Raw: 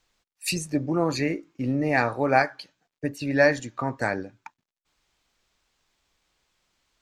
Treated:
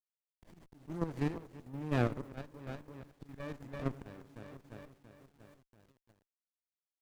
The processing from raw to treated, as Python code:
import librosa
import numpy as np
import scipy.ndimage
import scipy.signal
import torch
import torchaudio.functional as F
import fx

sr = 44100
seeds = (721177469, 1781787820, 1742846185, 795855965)

y = fx.high_shelf(x, sr, hz=11000.0, db=9.5)
y = fx.env_phaser(y, sr, low_hz=220.0, high_hz=4000.0, full_db=-27.5)
y = np.sign(y) * np.maximum(np.abs(y) - 10.0 ** (-35.5 / 20.0), 0.0)
y = fx.low_shelf(y, sr, hz=100.0, db=4.5, at=(1.5, 3.95))
y = fx.echo_feedback(y, sr, ms=343, feedback_pct=59, wet_db=-14.0)
y = fx.auto_swell(y, sr, attack_ms=448.0)
y = fx.echo_filtered(y, sr, ms=96, feedback_pct=72, hz=1300.0, wet_db=-18.0)
y = fx.quant_dither(y, sr, seeds[0], bits=10, dither='none')
y = fx.level_steps(y, sr, step_db=9)
y = fx.running_max(y, sr, window=33)
y = F.gain(torch.from_numpy(y), -4.5).numpy()